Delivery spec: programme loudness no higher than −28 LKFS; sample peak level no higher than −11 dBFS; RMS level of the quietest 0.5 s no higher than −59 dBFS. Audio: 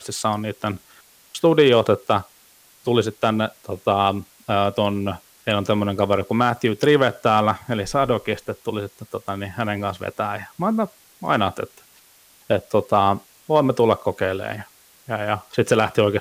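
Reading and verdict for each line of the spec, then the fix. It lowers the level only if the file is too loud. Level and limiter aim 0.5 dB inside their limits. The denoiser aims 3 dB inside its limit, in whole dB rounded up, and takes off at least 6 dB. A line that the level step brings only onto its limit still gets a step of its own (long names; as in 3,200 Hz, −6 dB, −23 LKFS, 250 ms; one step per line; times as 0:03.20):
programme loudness −21.5 LKFS: out of spec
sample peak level −5.0 dBFS: out of spec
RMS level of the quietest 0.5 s −53 dBFS: out of spec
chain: level −7 dB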